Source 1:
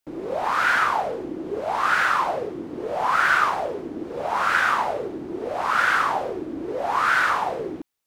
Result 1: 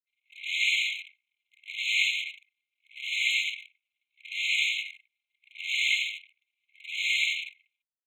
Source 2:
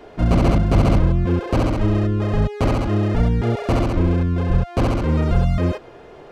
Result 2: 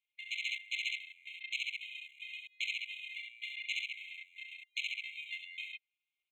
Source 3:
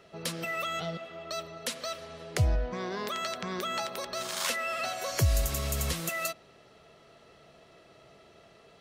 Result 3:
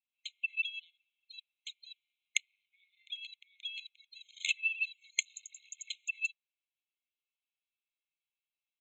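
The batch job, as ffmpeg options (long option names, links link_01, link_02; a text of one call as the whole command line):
ffmpeg -i in.wav -filter_complex "[0:a]aresample=16000,aresample=44100,anlmdn=251,acrossover=split=170[link_01][link_02];[link_01]asoftclip=type=tanh:threshold=-23.5dB[link_03];[link_03][link_02]amix=inputs=2:normalize=0,adynamicequalizer=threshold=0.0158:dfrequency=140:dqfactor=1.2:tfrequency=140:tqfactor=1.2:attack=5:release=100:ratio=0.375:range=3:mode=cutabove:tftype=bell,asplit=2[link_04][link_05];[link_05]asoftclip=type=hard:threshold=-22dB,volume=-9dB[link_06];[link_04][link_06]amix=inputs=2:normalize=0,lowshelf=frequency=470:gain=12,alimiter=level_in=11dB:limit=-1dB:release=50:level=0:latency=1,afftfilt=real='re*eq(mod(floor(b*sr/1024/2100),2),1)':imag='im*eq(mod(floor(b*sr/1024/2100),2),1)':win_size=1024:overlap=0.75,volume=-2dB" out.wav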